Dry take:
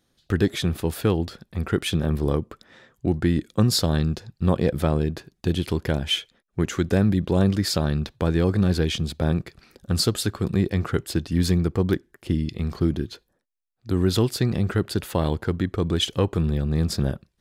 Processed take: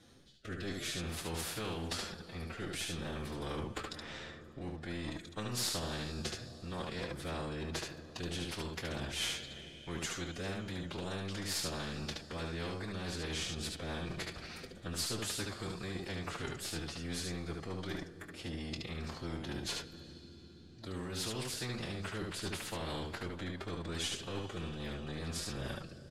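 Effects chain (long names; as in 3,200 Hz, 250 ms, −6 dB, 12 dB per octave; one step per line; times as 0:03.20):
gain on one half-wave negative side −3 dB
low-pass filter 8,900 Hz 12 dB per octave
reversed playback
downward compressor 16 to 1, threshold −31 dBFS, peak gain reduction 16.5 dB
reversed playback
rotating-speaker cabinet horn 0.75 Hz, later 7 Hz, at 0:04.34
phase-vocoder stretch with locked phases 1.5×
ambience of single reflections 23 ms −10 dB, 73 ms −5 dB
on a send at −21 dB: convolution reverb RT60 5.1 s, pre-delay 34 ms
on the sum: every bin compressed towards the loudest bin 2 to 1
level −1 dB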